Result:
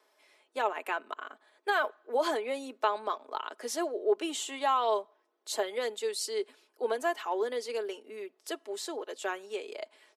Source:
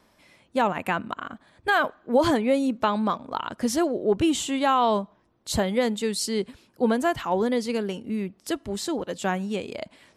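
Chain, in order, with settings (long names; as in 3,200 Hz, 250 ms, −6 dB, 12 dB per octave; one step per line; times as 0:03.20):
Butterworth high-pass 320 Hz 48 dB per octave
comb filter 4.7 ms, depth 47%
level −7 dB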